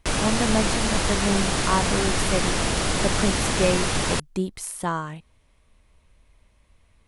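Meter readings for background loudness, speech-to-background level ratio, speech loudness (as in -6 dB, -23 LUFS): -23.5 LUFS, -4.0 dB, -27.5 LUFS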